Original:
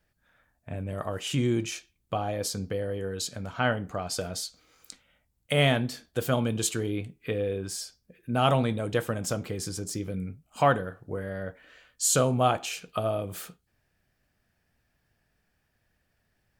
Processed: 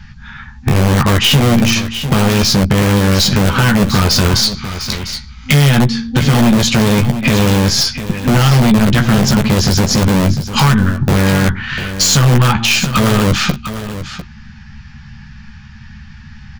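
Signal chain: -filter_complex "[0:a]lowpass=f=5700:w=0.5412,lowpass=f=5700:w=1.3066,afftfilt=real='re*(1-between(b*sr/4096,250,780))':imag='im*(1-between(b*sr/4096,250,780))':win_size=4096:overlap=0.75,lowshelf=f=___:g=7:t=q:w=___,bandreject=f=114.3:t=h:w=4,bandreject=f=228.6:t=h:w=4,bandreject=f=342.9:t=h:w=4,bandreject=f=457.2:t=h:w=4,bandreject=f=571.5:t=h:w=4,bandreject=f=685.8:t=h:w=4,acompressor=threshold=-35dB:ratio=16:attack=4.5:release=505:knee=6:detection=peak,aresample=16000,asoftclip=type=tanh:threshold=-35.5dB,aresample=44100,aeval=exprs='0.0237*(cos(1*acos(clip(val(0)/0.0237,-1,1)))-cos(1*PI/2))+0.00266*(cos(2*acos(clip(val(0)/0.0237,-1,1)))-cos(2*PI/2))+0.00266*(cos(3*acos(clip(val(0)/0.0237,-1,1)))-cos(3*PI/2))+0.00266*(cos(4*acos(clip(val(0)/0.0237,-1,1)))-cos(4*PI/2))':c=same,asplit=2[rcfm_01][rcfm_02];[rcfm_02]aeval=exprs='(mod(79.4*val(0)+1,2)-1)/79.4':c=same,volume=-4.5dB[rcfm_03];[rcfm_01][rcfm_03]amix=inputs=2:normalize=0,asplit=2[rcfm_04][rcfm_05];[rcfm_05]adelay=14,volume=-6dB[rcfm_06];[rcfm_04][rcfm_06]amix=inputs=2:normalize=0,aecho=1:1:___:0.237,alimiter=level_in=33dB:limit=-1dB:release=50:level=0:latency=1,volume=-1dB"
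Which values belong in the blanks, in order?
500, 1.5, 699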